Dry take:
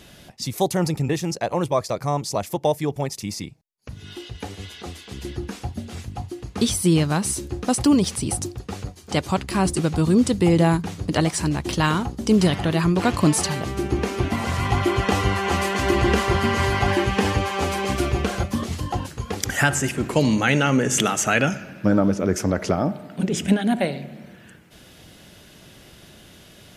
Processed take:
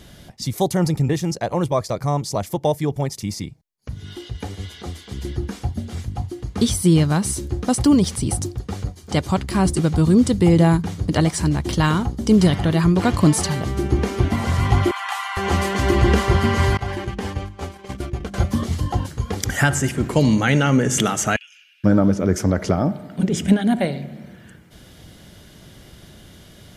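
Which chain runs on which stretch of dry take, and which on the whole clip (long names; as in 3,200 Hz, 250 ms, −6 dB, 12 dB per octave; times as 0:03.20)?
0:14.91–0:15.37: Butterworth high-pass 790 Hz 48 dB per octave + parametric band 5,400 Hz −6.5 dB 0.8 octaves
0:16.77–0:18.34: noise gate −23 dBFS, range −26 dB + mains-hum notches 50/100/150/200/250/300/350 Hz + downward compressor 2 to 1, threshold −31 dBFS
0:21.36–0:21.84: downward compressor, threshold −25 dBFS + four-pole ladder high-pass 2,600 Hz, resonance 75%
whole clip: low-shelf EQ 170 Hz +8 dB; notch filter 2,600 Hz, Q 12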